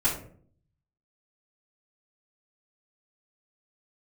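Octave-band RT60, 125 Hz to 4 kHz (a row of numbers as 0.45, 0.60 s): 0.95, 0.75, 0.60, 0.45, 0.40, 0.30 s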